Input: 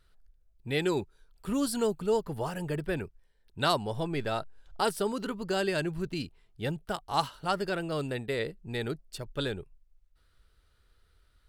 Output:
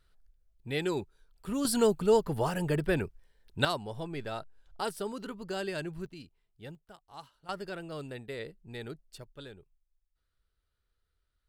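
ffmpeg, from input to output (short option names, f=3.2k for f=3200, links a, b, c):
-af "asetnsamples=n=441:p=0,asendcmd='1.65 volume volume 3.5dB;3.65 volume volume -6dB;6.06 volume volume -13dB;6.75 volume volume -19.5dB;7.49 volume volume -8dB;9.24 volume volume -14.5dB',volume=-3dB"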